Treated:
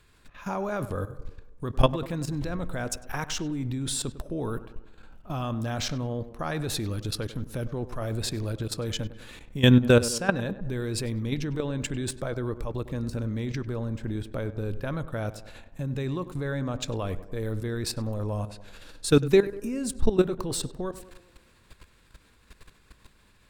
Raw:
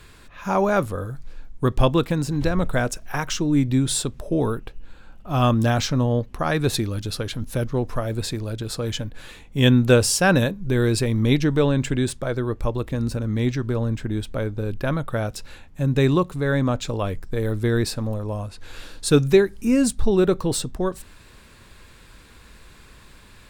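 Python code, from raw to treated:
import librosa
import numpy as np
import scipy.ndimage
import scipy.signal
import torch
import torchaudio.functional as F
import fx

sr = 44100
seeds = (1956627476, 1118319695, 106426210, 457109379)

y = fx.high_shelf(x, sr, hz=6700.0, db=-10.5, at=(10.13, 10.65))
y = fx.level_steps(y, sr, step_db=15)
y = fx.echo_tape(y, sr, ms=99, feedback_pct=62, wet_db=-13.0, lp_hz=1700.0, drive_db=9.0, wow_cents=27)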